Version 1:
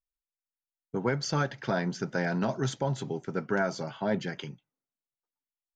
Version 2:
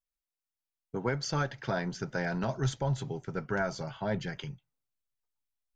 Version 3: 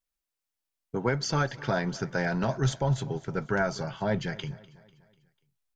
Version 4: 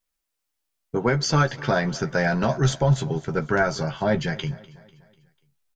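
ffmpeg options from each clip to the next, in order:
-af "asubboost=boost=10:cutoff=82,volume=-2dB"
-af "aecho=1:1:247|494|741|988:0.0944|0.0463|0.0227|0.0111,volume=4dB"
-filter_complex "[0:a]asplit=2[a][b];[b]adelay=13,volume=-7.5dB[c];[a][c]amix=inputs=2:normalize=0,volume=5.5dB"

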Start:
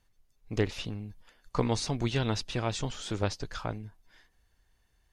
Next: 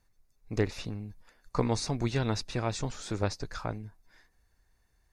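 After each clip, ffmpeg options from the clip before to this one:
-af "equalizer=f=3.1k:t=o:w=0.27:g=-12.5"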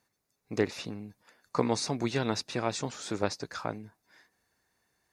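-af "highpass=180,volume=2dB"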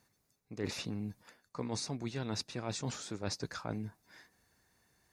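-af "bass=f=250:g=6,treble=f=4k:g=2,areverse,acompressor=threshold=-36dB:ratio=12,areverse,volume=2dB"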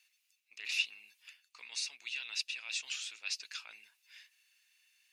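-af "highpass=f=2.7k:t=q:w=6.8"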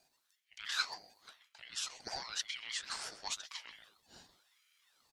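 -filter_complex "[0:a]asplit=2[a][b];[b]adelay=130,highpass=300,lowpass=3.4k,asoftclip=type=hard:threshold=-26.5dB,volume=-10dB[c];[a][c]amix=inputs=2:normalize=0,afreqshift=25,aeval=exprs='val(0)*sin(2*PI*1200*n/s+1200*0.7/0.96*sin(2*PI*0.96*n/s))':c=same,volume=1dB"

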